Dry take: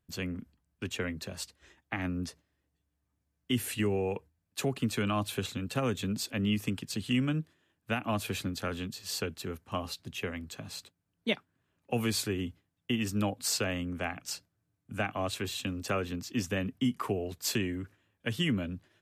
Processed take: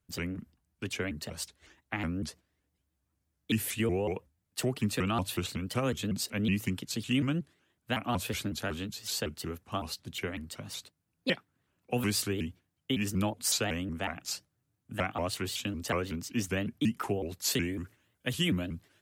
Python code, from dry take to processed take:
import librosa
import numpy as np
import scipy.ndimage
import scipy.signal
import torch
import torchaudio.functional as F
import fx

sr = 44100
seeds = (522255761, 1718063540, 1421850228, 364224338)

y = fx.high_shelf(x, sr, hz=6200.0, db=fx.steps((0.0, 3.5), (17.5, 10.5)))
y = fx.vibrato_shape(y, sr, shape='saw_up', rate_hz=5.4, depth_cents=250.0)